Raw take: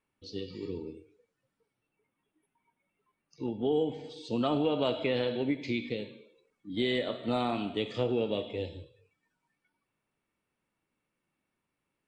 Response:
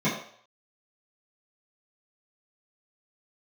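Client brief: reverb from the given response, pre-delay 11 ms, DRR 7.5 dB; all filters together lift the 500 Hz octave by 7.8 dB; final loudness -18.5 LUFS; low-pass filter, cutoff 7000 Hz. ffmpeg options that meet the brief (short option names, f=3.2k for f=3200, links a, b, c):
-filter_complex "[0:a]lowpass=7k,equalizer=f=500:t=o:g=9,asplit=2[a][b];[1:a]atrim=start_sample=2205,adelay=11[c];[b][c]afir=irnorm=-1:irlink=0,volume=-21dB[d];[a][d]amix=inputs=2:normalize=0,volume=7.5dB"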